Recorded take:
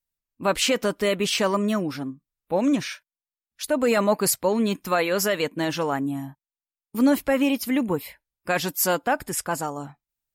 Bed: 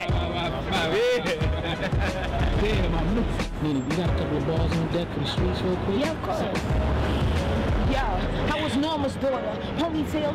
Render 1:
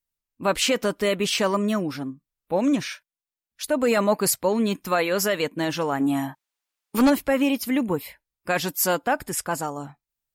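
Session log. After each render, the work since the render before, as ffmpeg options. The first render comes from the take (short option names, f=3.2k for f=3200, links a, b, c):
-filter_complex "[0:a]asplit=3[a][b][c];[a]afade=t=out:st=5.99:d=0.02[d];[b]asplit=2[e][f];[f]highpass=f=720:p=1,volume=20dB,asoftclip=type=tanh:threshold=-10dB[g];[e][g]amix=inputs=2:normalize=0,lowpass=f=5.8k:p=1,volume=-6dB,afade=t=in:st=5.99:d=0.02,afade=t=out:st=7.09:d=0.02[h];[c]afade=t=in:st=7.09:d=0.02[i];[d][h][i]amix=inputs=3:normalize=0"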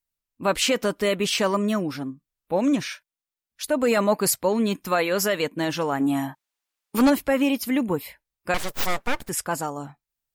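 -filter_complex "[0:a]asettb=1/sr,asplit=3[a][b][c];[a]atrim=end=8.544[d];[b]atrim=start=8.54:end=9.29,asetpts=PTS-STARTPTS,afade=t=in:d=0.004:c=qsin,afade=t=out:st=0.746:d=0.004:c=qsin,aeval=exprs='abs(val(0))':c=same[e];[c]atrim=start=9.286[f];[d][e]acrossfade=d=0.004:c1=hsin:c2=qsin[g];[g][f]acrossfade=d=0.004:c1=qsin:c2=hsin"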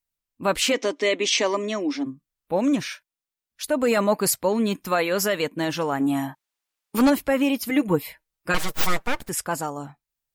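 -filter_complex "[0:a]asplit=3[a][b][c];[a]afade=t=out:st=0.72:d=0.02[d];[b]highpass=f=280:w=0.5412,highpass=f=280:w=1.3066,equalizer=f=280:t=q:w=4:g=10,equalizer=f=1.4k:t=q:w=4:g=-9,equalizer=f=2.1k:t=q:w=4:g=7,equalizer=f=3.5k:t=q:w=4:g=4,equalizer=f=6.1k:t=q:w=4:g=8,lowpass=f=7.3k:w=0.5412,lowpass=f=7.3k:w=1.3066,afade=t=in:st=0.72:d=0.02,afade=t=out:st=2.05:d=0.02[e];[c]afade=t=in:st=2.05:d=0.02[f];[d][e][f]amix=inputs=3:normalize=0,asettb=1/sr,asplit=3[g][h][i];[g]atrim=end=7.694[j];[h]atrim=start=7.69:end=9.06,asetpts=PTS-STARTPTS,afade=t=in:d=0.004:c=qsin,afade=t=out:st=1.366:d=0.004:c=qsin,aecho=1:1:6.3:0.82,atrim=end_sample=60417[k];[i]atrim=start=9.056[l];[j][k]acrossfade=d=0.004:c1=hsin:c2=qsin[m];[m][l]acrossfade=d=0.004:c1=qsin:c2=hsin"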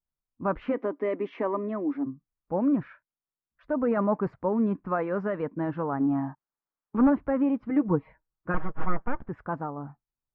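-af "lowpass=f=1.3k:w=0.5412,lowpass=f=1.3k:w=1.3066,equalizer=f=590:t=o:w=1.8:g=-6"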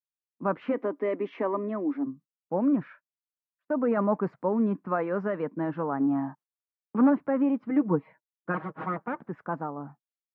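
-af "agate=range=-24dB:threshold=-49dB:ratio=16:detection=peak,highpass=f=150:w=0.5412,highpass=f=150:w=1.3066"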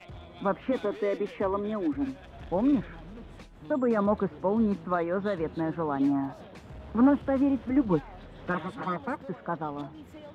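-filter_complex "[1:a]volume=-20.5dB[a];[0:a][a]amix=inputs=2:normalize=0"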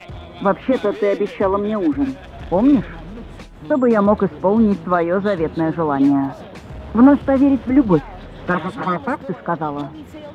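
-af "volume=11dB"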